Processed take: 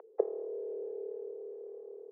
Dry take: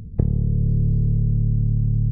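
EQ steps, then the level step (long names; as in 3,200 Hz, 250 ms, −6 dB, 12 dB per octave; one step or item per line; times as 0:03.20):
Butterworth high-pass 400 Hz 72 dB per octave
Bessel low-pass filter 680 Hz, order 2
high-frequency loss of the air 490 metres
+9.5 dB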